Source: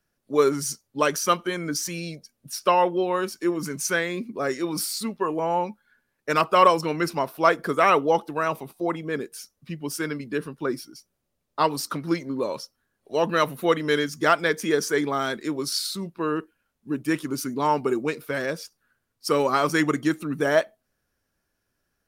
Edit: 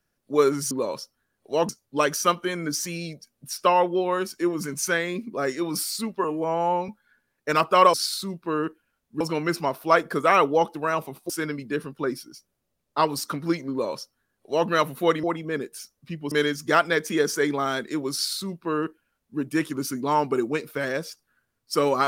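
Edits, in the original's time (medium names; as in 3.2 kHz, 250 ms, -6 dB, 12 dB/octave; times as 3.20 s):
5.26–5.69 s: stretch 1.5×
8.83–9.91 s: move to 13.85 s
12.32–13.30 s: copy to 0.71 s
15.66–16.93 s: copy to 6.74 s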